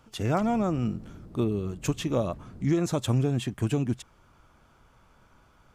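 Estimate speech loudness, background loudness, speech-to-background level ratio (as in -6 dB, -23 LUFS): -28.5 LUFS, -47.5 LUFS, 19.0 dB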